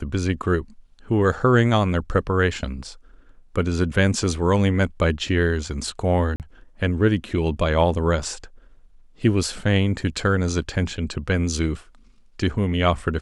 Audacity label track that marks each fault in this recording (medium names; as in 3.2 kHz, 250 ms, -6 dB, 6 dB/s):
6.360000	6.400000	dropout 38 ms